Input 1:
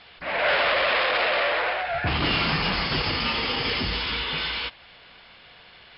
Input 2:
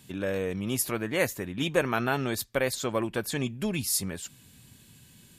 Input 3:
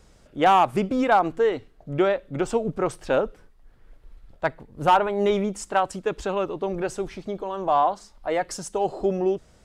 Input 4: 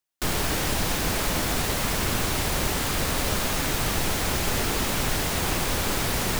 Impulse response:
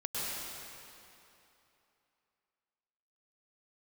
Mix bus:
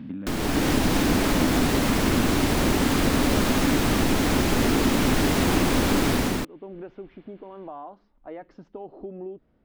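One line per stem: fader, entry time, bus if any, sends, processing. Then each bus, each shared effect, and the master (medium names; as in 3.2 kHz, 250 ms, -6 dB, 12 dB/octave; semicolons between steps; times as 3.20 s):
-11.5 dB, 1.70 s, bus A, no send, none
-9.0 dB, 0.00 s, bus A, no send, spectral levelling over time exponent 0.6; resonant low shelf 300 Hz +7 dB, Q 3
-12.5 dB, 0.00 s, bus A, no send, none
+2.5 dB, 0.05 s, no bus, no send, treble shelf 5.2 kHz -7 dB; level rider gain up to 12 dB
bus A: 0.0 dB, Gaussian low-pass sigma 2.9 samples; compression, threshold -34 dBFS, peak gain reduction 11 dB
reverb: none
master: peaking EQ 270 Hz +11.5 dB 0.87 oct; compression 1.5:1, threshold -38 dBFS, peak gain reduction 11.5 dB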